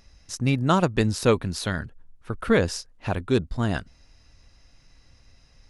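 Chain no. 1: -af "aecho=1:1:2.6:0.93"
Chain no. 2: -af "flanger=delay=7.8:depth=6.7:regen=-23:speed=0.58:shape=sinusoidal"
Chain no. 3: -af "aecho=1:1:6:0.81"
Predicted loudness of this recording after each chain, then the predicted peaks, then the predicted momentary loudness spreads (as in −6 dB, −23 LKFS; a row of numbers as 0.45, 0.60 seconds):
−23.0, −28.5, −23.0 LKFS; −5.5, −11.0, −1.5 dBFS; 12, 12, 13 LU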